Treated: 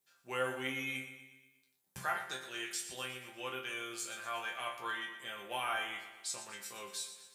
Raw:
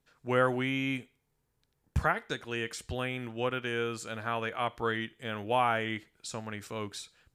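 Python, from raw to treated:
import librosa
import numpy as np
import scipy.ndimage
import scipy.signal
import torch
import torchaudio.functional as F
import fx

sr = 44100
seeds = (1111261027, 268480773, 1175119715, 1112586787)

y = fx.riaa(x, sr, side='recording')
y = fx.resonator_bank(y, sr, root=48, chord='sus4', decay_s=0.35)
y = fx.echo_feedback(y, sr, ms=120, feedback_pct=55, wet_db=-11.5)
y = F.gain(torch.from_numpy(y), 7.5).numpy()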